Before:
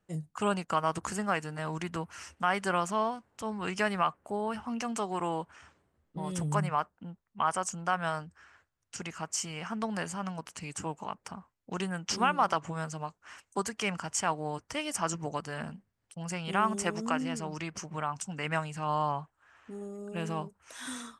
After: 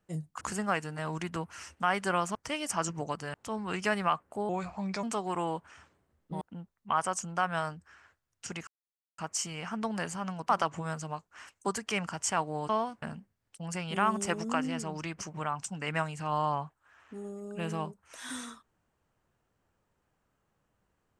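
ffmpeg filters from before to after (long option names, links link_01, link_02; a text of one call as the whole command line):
ffmpeg -i in.wav -filter_complex "[0:a]asplit=11[link_01][link_02][link_03][link_04][link_05][link_06][link_07][link_08][link_09][link_10][link_11];[link_01]atrim=end=0.412[link_12];[link_02]atrim=start=1.008:end=2.952[link_13];[link_03]atrim=start=14.598:end=15.592[link_14];[link_04]atrim=start=3.278:end=4.434[link_15];[link_05]atrim=start=4.43:end=4.88,asetpts=PTS-STARTPTS,asetrate=36603,aresample=44100[link_16];[link_06]atrim=start=4.876:end=6.262[link_17];[link_07]atrim=start=6.908:end=9.17,asetpts=PTS-STARTPTS,afade=type=out:start_time=2.258:duration=0.004:curve=hsin,apad=pad_dur=0.51[link_18];[link_08]atrim=start=9.17:end=10.482,asetpts=PTS-STARTPTS,afade=type=in:duration=0.004:curve=hsin[link_19];[link_09]atrim=start=12.398:end=14.602[link_20];[link_10]atrim=start=2.948:end=3.282[link_21];[link_11]atrim=start=15.588[link_22];[link_12][link_13]acrossfade=duration=0.004:curve1=hsin:curve2=hsin[link_23];[link_23][link_14]acrossfade=duration=0.004:curve1=hsin:curve2=hsin[link_24];[link_24][link_15]acrossfade=duration=0.004:curve1=hsin:curve2=hsin[link_25];[link_25][link_16]acrossfade=duration=0.004:curve1=hsin:curve2=hsin[link_26];[link_26][link_17]acrossfade=duration=0.004:curve1=hsin:curve2=hsin[link_27];[link_18][link_19]concat=n=2:v=0:a=1[link_28];[link_27][link_28]acrossfade=duration=0.004:curve1=hsin:curve2=hsin[link_29];[link_29][link_20]acrossfade=duration=0.004:curve1=hsin:curve2=hsin[link_30];[link_30][link_21]acrossfade=duration=0.004:curve1=hsin:curve2=hsin[link_31];[link_31][link_22]acrossfade=duration=0.004:curve1=hsin:curve2=hsin" out.wav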